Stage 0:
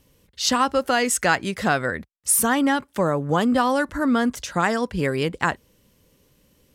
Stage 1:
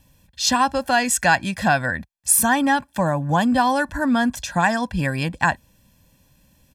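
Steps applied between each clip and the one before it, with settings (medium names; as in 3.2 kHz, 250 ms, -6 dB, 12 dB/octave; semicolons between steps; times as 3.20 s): comb 1.2 ms, depth 84%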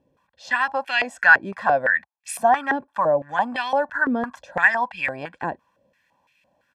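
step-sequenced band-pass 5.9 Hz 420–2400 Hz; trim +9 dB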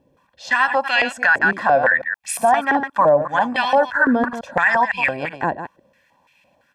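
chunks repeated in reverse 126 ms, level -10 dB; peak limiter -12 dBFS, peak gain reduction 10 dB; trim +6 dB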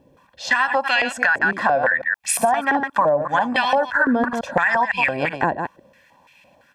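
compression 5:1, threshold -21 dBFS, peak gain reduction 10 dB; trim +5.5 dB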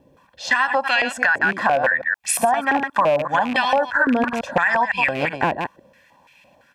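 rattle on loud lows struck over -30 dBFS, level -19 dBFS; wow and flutter 15 cents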